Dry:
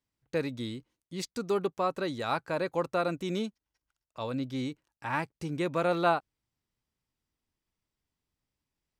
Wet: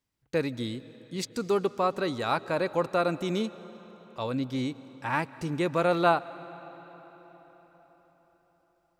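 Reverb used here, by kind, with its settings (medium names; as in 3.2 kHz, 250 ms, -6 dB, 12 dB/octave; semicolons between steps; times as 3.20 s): algorithmic reverb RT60 4.9 s, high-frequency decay 0.75×, pre-delay 105 ms, DRR 16.5 dB; trim +3 dB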